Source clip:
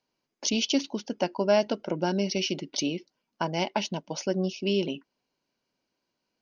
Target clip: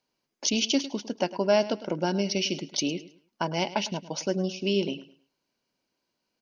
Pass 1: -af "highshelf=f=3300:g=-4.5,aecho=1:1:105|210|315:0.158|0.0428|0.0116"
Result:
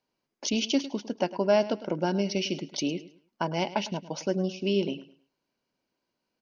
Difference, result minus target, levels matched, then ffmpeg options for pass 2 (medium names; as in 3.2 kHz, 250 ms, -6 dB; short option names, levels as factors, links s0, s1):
8 kHz band -4.5 dB
-af "highshelf=f=3300:g=2.5,aecho=1:1:105|210|315:0.158|0.0428|0.0116"